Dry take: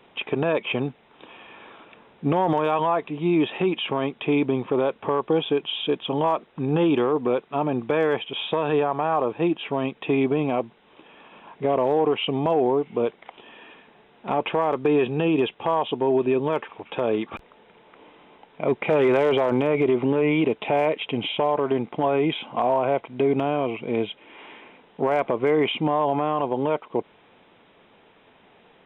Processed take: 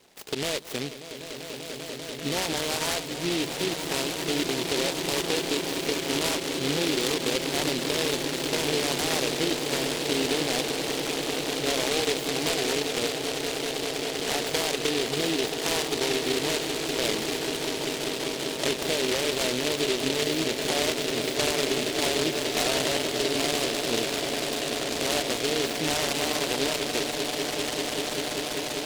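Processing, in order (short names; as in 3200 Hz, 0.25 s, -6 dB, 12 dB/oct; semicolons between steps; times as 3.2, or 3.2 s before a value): LPF 1100 Hz 12 dB/oct; low shelf 460 Hz -10.5 dB; compressor, threshold -26 dBFS, peak gain reduction 5.5 dB; on a send: swelling echo 0.196 s, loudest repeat 8, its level -10.5 dB; on the sum: noise-modulated delay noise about 3100 Hz, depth 0.24 ms; gain +1.5 dB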